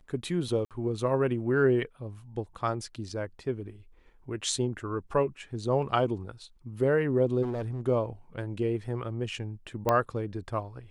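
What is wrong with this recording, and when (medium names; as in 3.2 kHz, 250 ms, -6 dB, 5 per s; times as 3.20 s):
0.65–0.71 s: dropout 57 ms
7.42–7.81 s: clipped -28.5 dBFS
9.89 s: pop -12 dBFS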